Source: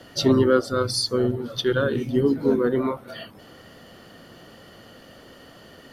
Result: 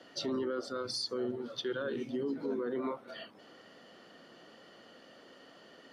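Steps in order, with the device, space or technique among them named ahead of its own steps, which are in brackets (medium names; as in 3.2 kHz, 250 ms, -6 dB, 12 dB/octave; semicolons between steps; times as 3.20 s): DJ mixer with the lows and highs turned down (three-band isolator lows -21 dB, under 190 Hz, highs -18 dB, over 7.7 kHz; peak limiter -19 dBFS, peak gain reduction 11.5 dB); trim -8 dB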